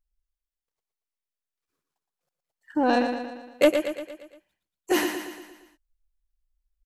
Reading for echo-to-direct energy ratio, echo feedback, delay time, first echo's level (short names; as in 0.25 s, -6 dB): -5.5 dB, 53%, 0.116 s, -7.0 dB